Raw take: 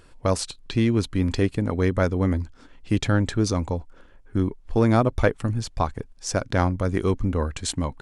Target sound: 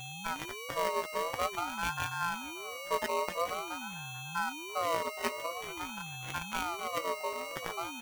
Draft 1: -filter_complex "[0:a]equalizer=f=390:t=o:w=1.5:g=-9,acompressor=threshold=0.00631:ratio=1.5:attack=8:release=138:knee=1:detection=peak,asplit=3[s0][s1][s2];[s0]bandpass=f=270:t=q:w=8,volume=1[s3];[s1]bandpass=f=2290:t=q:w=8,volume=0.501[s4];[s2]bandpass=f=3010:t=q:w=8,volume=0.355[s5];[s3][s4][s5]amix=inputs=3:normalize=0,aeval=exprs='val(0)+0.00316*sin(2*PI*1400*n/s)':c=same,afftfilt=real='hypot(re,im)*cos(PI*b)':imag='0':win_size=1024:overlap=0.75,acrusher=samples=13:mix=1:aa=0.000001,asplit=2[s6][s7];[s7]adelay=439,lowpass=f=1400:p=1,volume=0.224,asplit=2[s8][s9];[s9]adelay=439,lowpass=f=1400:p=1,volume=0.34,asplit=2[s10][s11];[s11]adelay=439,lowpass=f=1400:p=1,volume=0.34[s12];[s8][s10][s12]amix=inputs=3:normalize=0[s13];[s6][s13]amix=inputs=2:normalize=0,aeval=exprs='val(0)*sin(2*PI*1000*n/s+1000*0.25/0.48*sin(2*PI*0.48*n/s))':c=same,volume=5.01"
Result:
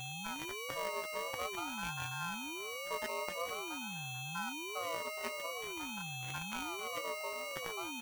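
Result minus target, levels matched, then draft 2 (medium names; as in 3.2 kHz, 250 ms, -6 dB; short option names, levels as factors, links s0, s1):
compression: peak gain reduction +9.5 dB
-filter_complex "[0:a]asplit=3[s0][s1][s2];[s0]bandpass=f=270:t=q:w=8,volume=1[s3];[s1]bandpass=f=2290:t=q:w=8,volume=0.501[s4];[s2]bandpass=f=3010:t=q:w=8,volume=0.355[s5];[s3][s4][s5]amix=inputs=3:normalize=0,equalizer=f=390:t=o:w=1.5:g=-9,aeval=exprs='val(0)+0.00316*sin(2*PI*1400*n/s)':c=same,afftfilt=real='hypot(re,im)*cos(PI*b)':imag='0':win_size=1024:overlap=0.75,acrusher=samples=13:mix=1:aa=0.000001,asplit=2[s6][s7];[s7]adelay=439,lowpass=f=1400:p=1,volume=0.224,asplit=2[s8][s9];[s9]adelay=439,lowpass=f=1400:p=1,volume=0.34,asplit=2[s10][s11];[s11]adelay=439,lowpass=f=1400:p=1,volume=0.34[s12];[s8][s10][s12]amix=inputs=3:normalize=0[s13];[s6][s13]amix=inputs=2:normalize=0,aeval=exprs='val(0)*sin(2*PI*1000*n/s+1000*0.25/0.48*sin(2*PI*0.48*n/s))':c=same,volume=5.01"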